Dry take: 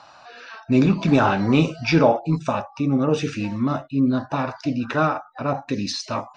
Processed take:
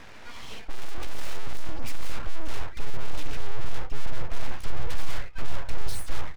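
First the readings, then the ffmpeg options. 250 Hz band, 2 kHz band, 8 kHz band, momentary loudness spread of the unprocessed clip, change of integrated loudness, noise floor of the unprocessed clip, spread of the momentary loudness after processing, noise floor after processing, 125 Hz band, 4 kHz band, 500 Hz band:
-26.5 dB, -11.5 dB, no reading, 9 LU, -18.0 dB, -49 dBFS, 5 LU, -41 dBFS, -13.0 dB, -9.0 dB, -20.5 dB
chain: -filter_complex "[0:a]bass=f=250:g=12,treble=f=4000:g=-8,asplit=2[s0][s1];[s1]aecho=0:1:14|25|74:0.422|0.211|0.141[s2];[s0][s2]amix=inputs=2:normalize=0,aeval=exprs='abs(val(0))':c=same,aeval=exprs='(tanh(20*val(0)+0.7)-tanh(0.7))/20':c=same,asubboost=boost=6:cutoff=99,volume=2.24"

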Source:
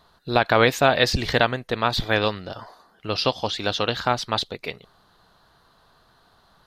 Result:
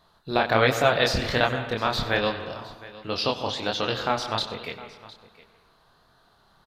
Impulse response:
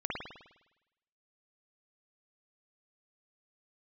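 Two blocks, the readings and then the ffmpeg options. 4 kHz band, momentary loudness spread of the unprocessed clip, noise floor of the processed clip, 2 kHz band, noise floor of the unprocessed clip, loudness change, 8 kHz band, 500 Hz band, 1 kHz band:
-2.5 dB, 17 LU, -62 dBFS, -2.5 dB, -60 dBFS, -2.5 dB, -3.0 dB, -2.5 dB, -2.5 dB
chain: -filter_complex "[0:a]flanger=delay=22.5:depth=7.9:speed=1.3,aecho=1:1:711:0.112,asplit=2[s0][s1];[1:a]atrim=start_sample=2205,adelay=94[s2];[s1][s2]afir=irnorm=-1:irlink=0,volume=0.178[s3];[s0][s3]amix=inputs=2:normalize=0"

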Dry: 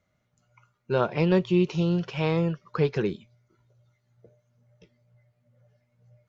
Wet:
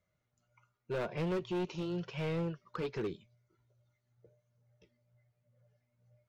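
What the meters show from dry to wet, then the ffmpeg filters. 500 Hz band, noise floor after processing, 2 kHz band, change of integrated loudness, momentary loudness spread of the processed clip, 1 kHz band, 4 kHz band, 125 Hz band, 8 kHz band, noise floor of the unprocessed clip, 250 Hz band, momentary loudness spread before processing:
-11.0 dB, -82 dBFS, -10.0 dB, -12.0 dB, 6 LU, -11.0 dB, -10.0 dB, -13.0 dB, no reading, -74 dBFS, -12.5 dB, 7 LU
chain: -af "flanger=delay=1.8:depth=1.6:regen=-56:speed=0.9:shape=sinusoidal,asoftclip=type=hard:threshold=0.0473,volume=0.596"

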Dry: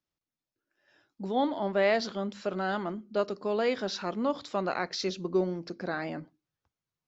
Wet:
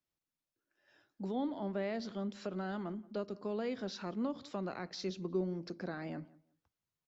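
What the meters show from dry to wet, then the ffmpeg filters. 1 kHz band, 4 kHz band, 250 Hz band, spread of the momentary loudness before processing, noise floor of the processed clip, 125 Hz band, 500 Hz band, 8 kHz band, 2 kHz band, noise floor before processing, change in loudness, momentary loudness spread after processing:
-12.0 dB, -11.0 dB, -5.0 dB, 8 LU, under -85 dBFS, -3.5 dB, -10.0 dB, no reading, -13.0 dB, under -85 dBFS, -8.5 dB, 6 LU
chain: -filter_complex "[0:a]acrossover=split=320[s0][s1];[s1]acompressor=threshold=0.00794:ratio=2.5[s2];[s0][s2]amix=inputs=2:normalize=0,asplit=2[s3][s4];[s4]adelay=177,lowpass=f=2100:p=1,volume=0.0794,asplit=2[s5][s6];[s6]adelay=177,lowpass=f=2100:p=1,volume=0.21[s7];[s3][s5][s7]amix=inputs=3:normalize=0,volume=0.708"

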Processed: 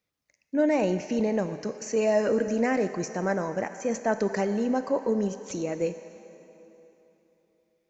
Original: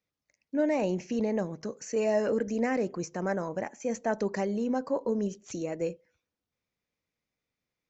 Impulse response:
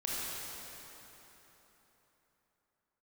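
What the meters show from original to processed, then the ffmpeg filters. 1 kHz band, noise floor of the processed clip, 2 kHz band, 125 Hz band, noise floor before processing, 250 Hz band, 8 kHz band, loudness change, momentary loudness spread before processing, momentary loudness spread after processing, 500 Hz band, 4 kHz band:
+4.0 dB, -78 dBFS, +4.5 dB, +3.0 dB, under -85 dBFS, +3.0 dB, no reading, +3.5 dB, 8 LU, 8 LU, +3.5 dB, +4.5 dB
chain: -filter_complex "[0:a]asplit=2[s0][s1];[1:a]atrim=start_sample=2205,asetrate=48510,aresample=44100,lowshelf=f=350:g=-10.5[s2];[s1][s2]afir=irnorm=-1:irlink=0,volume=0.266[s3];[s0][s3]amix=inputs=2:normalize=0,volume=1.33"

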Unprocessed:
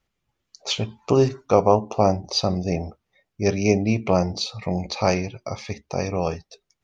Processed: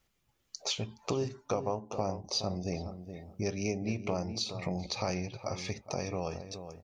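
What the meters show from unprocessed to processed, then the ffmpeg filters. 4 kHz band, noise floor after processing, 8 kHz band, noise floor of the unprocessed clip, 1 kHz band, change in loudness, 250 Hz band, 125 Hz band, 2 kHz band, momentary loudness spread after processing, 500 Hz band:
-8.0 dB, -76 dBFS, no reading, -79 dBFS, -14.0 dB, -12.5 dB, -12.5 dB, -11.5 dB, -10.5 dB, 6 LU, -14.0 dB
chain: -filter_complex "[0:a]highshelf=f=6000:g=9,acompressor=threshold=0.0178:ratio=3,asplit=2[s0][s1];[s1]adelay=420,lowpass=f=1200:p=1,volume=0.355,asplit=2[s2][s3];[s3]adelay=420,lowpass=f=1200:p=1,volume=0.2,asplit=2[s4][s5];[s5]adelay=420,lowpass=f=1200:p=1,volume=0.2[s6];[s0][s2][s4][s6]amix=inputs=4:normalize=0"

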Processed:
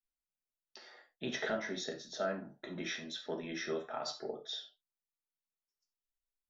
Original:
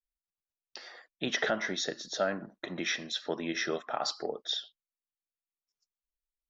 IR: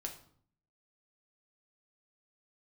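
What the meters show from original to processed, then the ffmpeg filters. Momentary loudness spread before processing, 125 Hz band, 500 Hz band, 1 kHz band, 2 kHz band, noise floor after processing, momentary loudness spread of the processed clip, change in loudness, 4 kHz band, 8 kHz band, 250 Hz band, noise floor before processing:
17 LU, -3.5 dB, -4.5 dB, -6.5 dB, -7.5 dB, under -85 dBFS, 19 LU, -6.5 dB, -8.0 dB, no reading, -4.5 dB, under -85 dBFS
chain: -filter_complex "[0:a]equalizer=f=180:w=0.31:g=3[s0];[1:a]atrim=start_sample=2205,atrim=end_sample=4410[s1];[s0][s1]afir=irnorm=-1:irlink=0,volume=0.501"

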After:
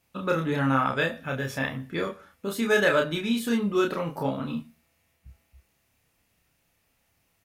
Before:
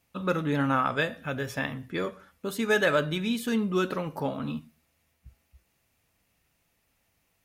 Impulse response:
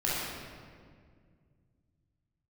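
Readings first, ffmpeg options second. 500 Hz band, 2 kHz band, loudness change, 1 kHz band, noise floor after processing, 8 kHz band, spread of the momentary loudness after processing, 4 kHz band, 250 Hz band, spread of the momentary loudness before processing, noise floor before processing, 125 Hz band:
+2.5 dB, +2.0 dB, +2.0 dB, +1.5 dB, -71 dBFS, +2.0 dB, 11 LU, +1.5 dB, +1.5 dB, 11 LU, -73 dBFS, +1.5 dB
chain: -filter_complex "[0:a]asplit=2[s0][s1];[s1]adelay=30,volume=0.708[s2];[s0][s2]amix=inputs=2:normalize=0"

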